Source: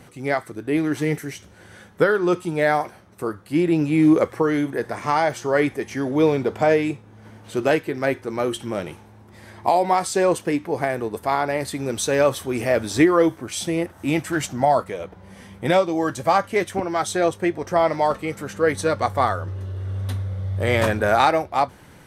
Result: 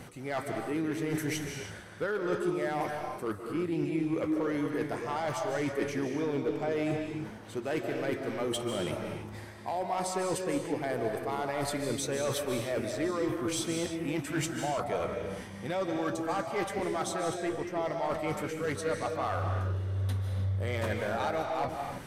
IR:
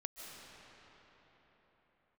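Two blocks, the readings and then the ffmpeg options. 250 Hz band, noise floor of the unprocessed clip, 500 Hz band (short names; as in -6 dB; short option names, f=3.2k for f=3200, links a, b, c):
-10.5 dB, -48 dBFS, -11.0 dB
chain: -filter_complex "[0:a]areverse,acompressor=threshold=-31dB:ratio=8,areverse,asoftclip=type=hard:threshold=-27dB[a];[1:a]atrim=start_sample=2205,afade=t=out:st=0.39:d=0.01,atrim=end_sample=17640[b];[a][b]afir=irnorm=-1:irlink=0,volume=6dB"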